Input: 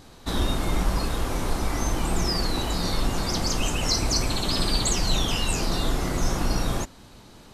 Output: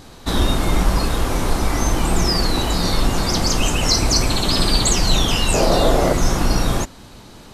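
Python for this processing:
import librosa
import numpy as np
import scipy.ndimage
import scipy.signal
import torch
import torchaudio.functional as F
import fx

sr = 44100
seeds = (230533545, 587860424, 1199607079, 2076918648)

y = fx.peak_eq(x, sr, hz=580.0, db=13.5, octaves=0.95, at=(5.54, 6.13))
y = F.gain(torch.from_numpy(y), 7.0).numpy()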